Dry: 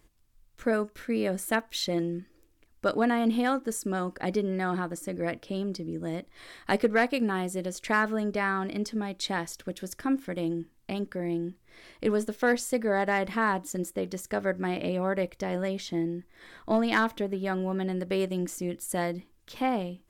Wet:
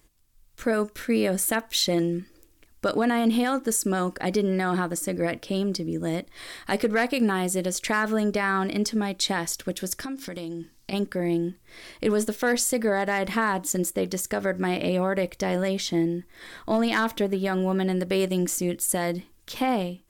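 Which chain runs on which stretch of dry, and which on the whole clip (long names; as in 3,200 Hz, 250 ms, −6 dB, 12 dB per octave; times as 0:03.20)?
0:10.01–0:10.93: parametric band 5,100 Hz +10 dB 0.92 octaves + downward compressor, threshold −36 dBFS
whole clip: high-shelf EQ 3,800 Hz +7 dB; brickwall limiter −19.5 dBFS; automatic gain control gain up to 5.5 dB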